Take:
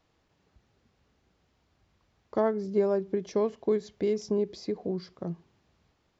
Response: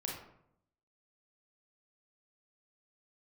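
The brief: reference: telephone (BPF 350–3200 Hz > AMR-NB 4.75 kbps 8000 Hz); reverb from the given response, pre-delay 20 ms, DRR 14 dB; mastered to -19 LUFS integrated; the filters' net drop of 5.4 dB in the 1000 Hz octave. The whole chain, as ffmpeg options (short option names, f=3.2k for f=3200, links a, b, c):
-filter_complex "[0:a]equalizer=f=1k:t=o:g=-7,asplit=2[a][b];[1:a]atrim=start_sample=2205,adelay=20[c];[b][c]afir=irnorm=-1:irlink=0,volume=-15dB[d];[a][d]amix=inputs=2:normalize=0,highpass=350,lowpass=3.2k,volume=14.5dB" -ar 8000 -c:a libopencore_amrnb -b:a 4750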